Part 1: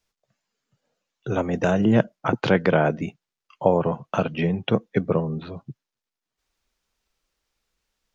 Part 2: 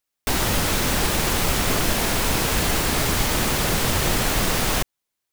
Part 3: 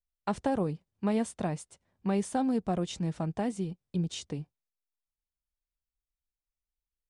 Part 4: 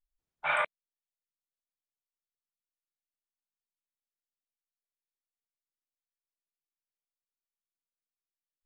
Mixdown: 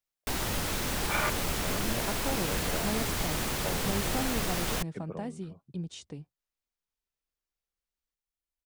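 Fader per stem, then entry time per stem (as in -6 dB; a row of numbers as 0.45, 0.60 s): -19.5, -10.0, -6.0, -2.5 dB; 0.00, 0.00, 1.80, 0.65 s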